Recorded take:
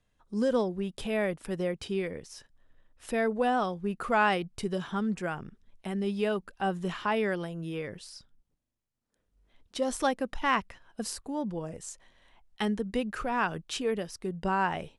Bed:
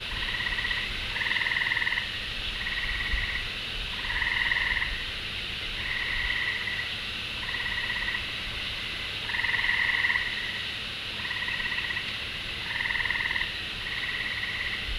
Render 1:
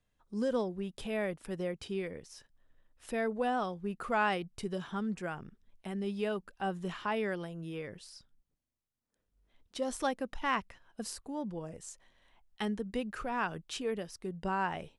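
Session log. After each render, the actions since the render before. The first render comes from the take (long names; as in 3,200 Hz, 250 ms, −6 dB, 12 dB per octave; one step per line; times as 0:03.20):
level −5 dB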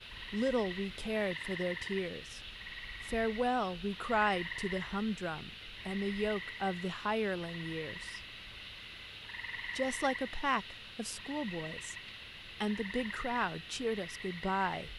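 mix in bed −15 dB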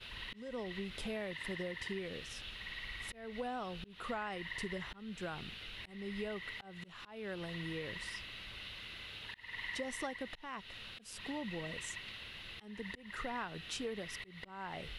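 downward compressor 8 to 1, threshold −37 dBFS, peak gain reduction 12.5 dB
volume swells 257 ms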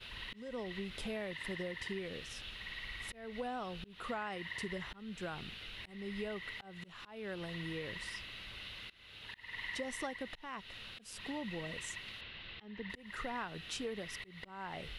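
0:04.09–0:04.68: high-pass filter 65 Hz
0:08.90–0:09.37: fade in, from −23 dB
0:12.21–0:12.90: low-pass filter 4,300 Hz 24 dB per octave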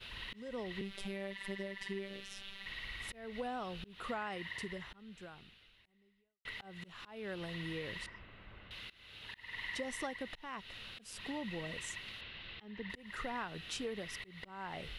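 0:00.81–0:02.66: phases set to zero 196 Hz
0:04.42–0:06.45: fade out quadratic
0:08.06–0:08.71: low-pass filter 1,300 Hz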